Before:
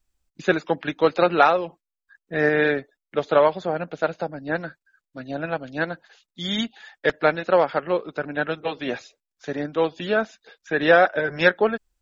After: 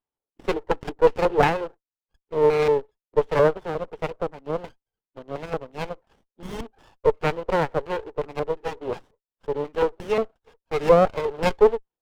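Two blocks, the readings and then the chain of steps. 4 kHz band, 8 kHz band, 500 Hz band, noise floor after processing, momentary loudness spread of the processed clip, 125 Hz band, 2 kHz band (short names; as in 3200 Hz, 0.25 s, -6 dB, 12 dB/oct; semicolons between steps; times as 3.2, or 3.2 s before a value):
-7.5 dB, n/a, +0.5 dB, under -85 dBFS, 17 LU, +1.5 dB, -9.5 dB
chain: LFO low-pass square 2.8 Hz 600–2600 Hz; in parallel at -8 dB: bit-crush 5-bit; on the sum: speaker cabinet 420–3400 Hz, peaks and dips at 430 Hz +9 dB, 620 Hz -6 dB, 910 Hz +8 dB, 1400 Hz -5 dB, 2000 Hz -8 dB, 3100 Hz +5 dB; running maximum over 17 samples; gain -6.5 dB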